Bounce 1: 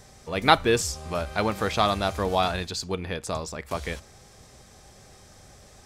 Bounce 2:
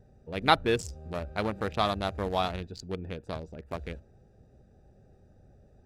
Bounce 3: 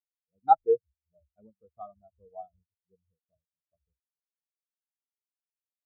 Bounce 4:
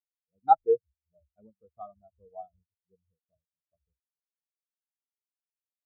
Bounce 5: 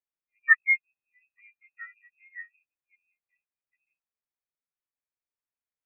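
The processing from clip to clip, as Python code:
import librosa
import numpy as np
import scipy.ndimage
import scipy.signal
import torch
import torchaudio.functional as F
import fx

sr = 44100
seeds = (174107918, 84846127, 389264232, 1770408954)

y1 = fx.wiener(x, sr, points=41)
y1 = y1 * librosa.db_to_amplitude(-4.0)
y2 = fx.spectral_expand(y1, sr, expansion=4.0)
y3 = y2
y4 = fx.freq_invert(y3, sr, carrier_hz=2600)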